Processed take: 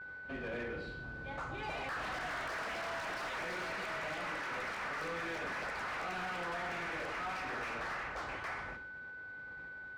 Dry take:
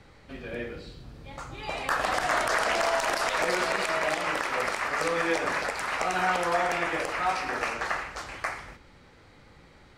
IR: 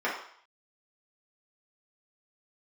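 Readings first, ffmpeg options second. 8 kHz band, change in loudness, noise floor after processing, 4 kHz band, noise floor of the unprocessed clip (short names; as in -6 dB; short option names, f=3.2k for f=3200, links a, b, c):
-17.0 dB, -12.0 dB, -48 dBFS, -12.0 dB, -55 dBFS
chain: -filter_complex "[0:a]highpass=40,highshelf=f=8.3k:g=-4.5,agate=range=-33dB:threshold=-49dB:ratio=3:detection=peak,acrossover=split=250|1400|5000[a][b][c][d];[b]acompressor=threshold=-37dB:ratio=6[e];[a][e][c][d]amix=inputs=4:normalize=0,volume=36dB,asoftclip=hard,volume=-36dB,aeval=exprs='val(0)+0.00501*sin(2*PI*1500*n/s)':c=same,asplit=2[f][g];[g]highpass=f=720:p=1,volume=7dB,asoftclip=type=tanh:threshold=-33.5dB[h];[f][h]amix=inputs=2:normalize=0,lowpass=f=1.1k:p=1,volume=-6dB,volume=2.5dB"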